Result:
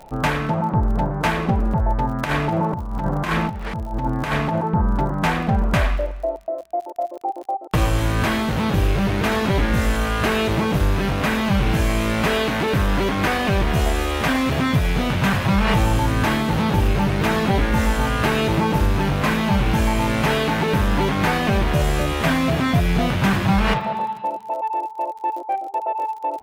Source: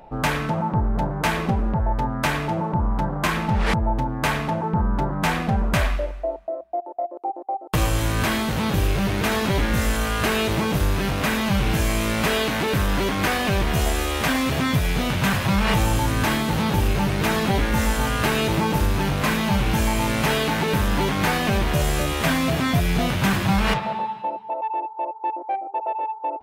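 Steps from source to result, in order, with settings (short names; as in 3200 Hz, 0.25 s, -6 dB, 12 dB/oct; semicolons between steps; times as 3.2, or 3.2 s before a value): high shelf 4200 Hz -8 dB; 2.24–4.61 negative-ratio compressor -24 dBFS, ratio -0.5; crackle 47/s -35 dBFS; gain +2.5 dB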